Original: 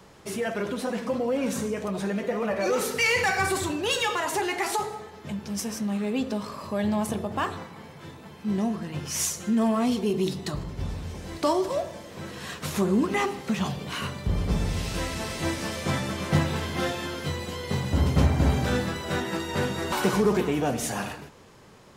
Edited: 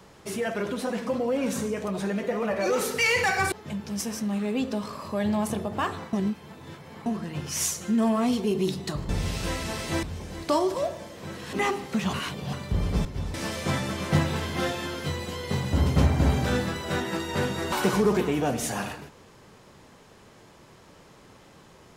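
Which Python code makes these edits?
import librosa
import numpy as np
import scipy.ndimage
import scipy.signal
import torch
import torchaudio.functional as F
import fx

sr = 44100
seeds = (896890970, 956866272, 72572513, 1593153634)

y = fx.edit(x, sr, fx.cut(start_s=3.52, length_s=1.59),
    fx.reverse_span(start_s=7.72, length_s=0.93),
    fx.swap(start_s=10.68, length_s=0.29, other_s=14.6, other_length_s=0.94),
    fx.cut(start_s=12.47, length_s=0.61),
    fx.reverse_span(start_s=13.68, length_s=0.4), tone=tone)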